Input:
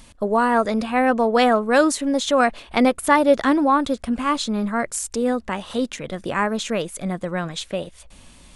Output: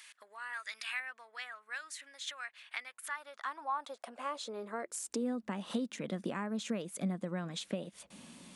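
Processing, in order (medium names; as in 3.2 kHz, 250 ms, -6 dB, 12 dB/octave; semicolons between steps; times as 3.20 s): 0.53–1.00 s: tilt shelf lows -7 dB, about 1.4 kHz; compression 12:1, threshold -31 dBFS, peak gain reduction 21 dB; 1.90–3.26 s: mains buzz 120 Hz, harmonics 9, -60 dBFS -9 dB/octave; high-pass sweep 1.8 kHz -> 200 Hz, 2.90–5.50 s; trim -5.5 dB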